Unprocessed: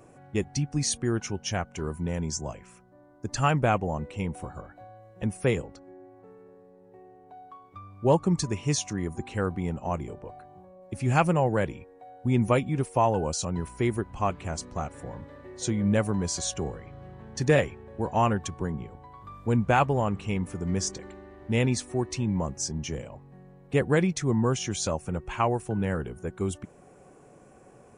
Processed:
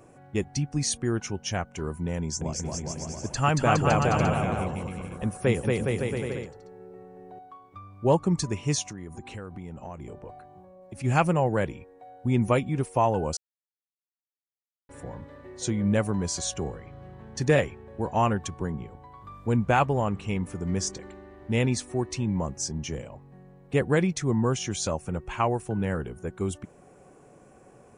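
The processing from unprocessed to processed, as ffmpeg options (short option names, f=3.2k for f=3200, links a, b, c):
-filter_complex "[0:a]asettb=1/sr,asplit=3[a][b][c];[a]atrim=end=2.184[d];[b]atrim=start=2.18:end=7.39,asetpts=PTS-STARTPTS,afade=t=in:d=0.004:c=qsin,afade=t=out:st=5.206:d=0.004:c=qsin,aecho=1:1:230|414|561.2|679|773.2|848.5|908.8:0.794|0.631|0.501|0.398|0.316|0.251|0.2,atrim=end_sample=229761[e];[c]atrim=start=7.386[f];[d][e]acrossfade=d=0.004:c1=hsin:c2=qsin[g];[g][f]acrossfade=d=0.004:c1=qsin:c2=hsin,asplit=3[h][i][j];[h]afade=t=out:st=8.82:d=0.02[k];[i]acompressor=threshold=-35dB:ratio=6:attack=3.2:release=140:knee=1:detection=peak,afade=t=in:st=8.82:d=0.02,afade=t=out:st=11.03:d=0.02[l];[j]afade=t=in:st=11.03:d=0.02[m];[k][l][m]amix=inputs=3:normalize=0,asplit=3[n][o][p];[n]atrim=end=13.37,asetpts=PTS-STARTPTS,afade=t=out:st=13.366:d=0.004:c=hsin[q];[o]atrim=start=13.37:end=14.89,asetpts=PTS-STARTPTS,volume=0[r];[p]atrim=start=14.89,asetpts=PTS-STARTPTS,afade=t=in:d=0.004:c=hsin[s];[q][r][s]concat=n=3:v=0:a=1"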